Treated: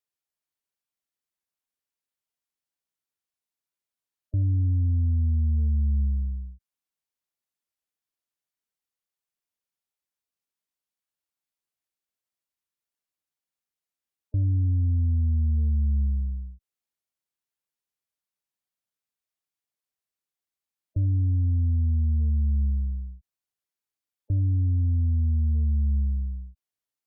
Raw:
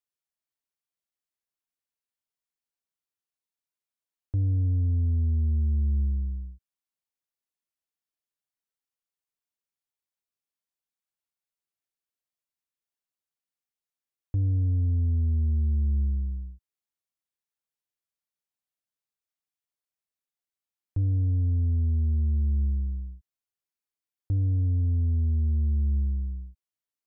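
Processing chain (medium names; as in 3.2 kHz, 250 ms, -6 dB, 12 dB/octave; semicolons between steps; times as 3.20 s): Chebyshev shaper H 6 -27 dB, 7 -37 dB, 8 -32 dB, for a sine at -21 dBFS; spectral gate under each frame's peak -30 dB strong; trim +1.5 dB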